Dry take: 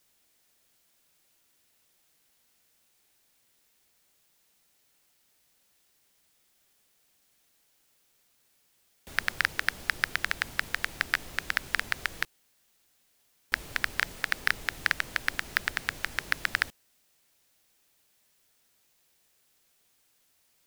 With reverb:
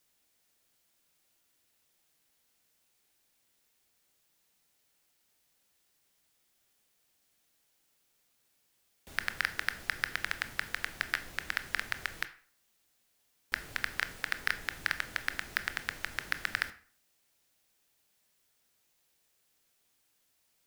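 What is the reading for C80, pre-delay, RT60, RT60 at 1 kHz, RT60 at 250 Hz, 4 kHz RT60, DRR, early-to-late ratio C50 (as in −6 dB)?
19.0 dB, 19 ms, 0.50 s, 0.45 s, 0.50 s, 0.35 s, 11.0 dB, 15.5 dB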